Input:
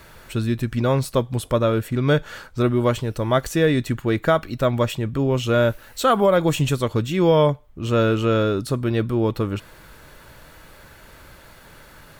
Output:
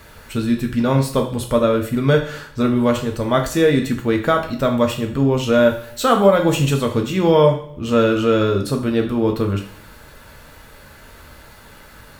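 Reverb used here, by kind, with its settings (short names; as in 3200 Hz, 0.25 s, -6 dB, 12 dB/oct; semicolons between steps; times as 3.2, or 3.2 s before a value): two-slope reverb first 0.51 s, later 1.6 s, from -25 dB, DRR 2.5 dB; gain +1 dB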